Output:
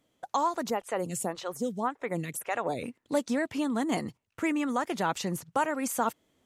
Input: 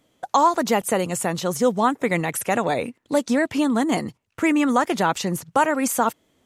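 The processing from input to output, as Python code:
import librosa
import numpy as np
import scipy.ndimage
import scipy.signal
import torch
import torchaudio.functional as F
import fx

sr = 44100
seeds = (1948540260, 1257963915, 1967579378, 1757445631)

y = fx.rider(x, sr, range_db=4, speed_s=0.5)
y = fx.stagger_phaser(y, sr, hz=1.8, at=(0.7, 2.83))
y = y * librosa.db_to_amplitude(-8.5)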